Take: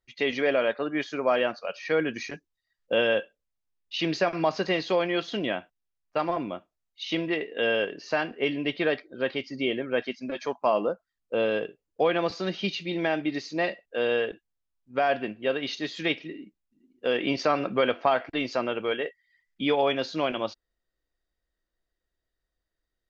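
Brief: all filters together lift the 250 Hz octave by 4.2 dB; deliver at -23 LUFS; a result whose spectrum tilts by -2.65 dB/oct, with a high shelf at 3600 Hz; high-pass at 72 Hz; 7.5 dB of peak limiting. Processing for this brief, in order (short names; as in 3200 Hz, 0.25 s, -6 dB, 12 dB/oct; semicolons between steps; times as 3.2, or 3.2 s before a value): HPF 72 Hz; bell 250 Hz +5.5 dB; high shelf 3600 Hz +8.5 dB; gain +5 dB; limiter -11 dBFS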